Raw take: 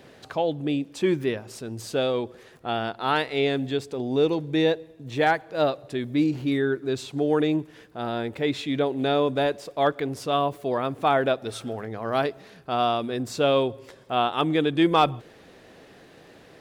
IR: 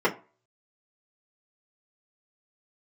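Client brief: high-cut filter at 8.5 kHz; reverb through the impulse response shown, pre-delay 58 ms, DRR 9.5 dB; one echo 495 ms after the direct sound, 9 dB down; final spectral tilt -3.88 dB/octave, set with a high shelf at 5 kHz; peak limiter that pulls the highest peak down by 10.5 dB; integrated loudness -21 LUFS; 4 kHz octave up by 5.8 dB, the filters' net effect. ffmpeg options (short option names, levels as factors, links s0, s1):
-filter_complex "[0:a]lowpass=8500,equalizer=f=4000:t=o:g=5.5,highshelf=f=5000:g=4,alimiter=limit=0.133:level=0:latency=1,aecho=1:1:495:0.355,asplit=2[s0][s1];[1:a]atrim=start_sample=2205,adelay=58[s2];[s1][s2]afir=irnorm=-1:irlink=0,volume=0.0562[s3];[s0][s3]amix=inputs=2:normalize=0,volume=2.11"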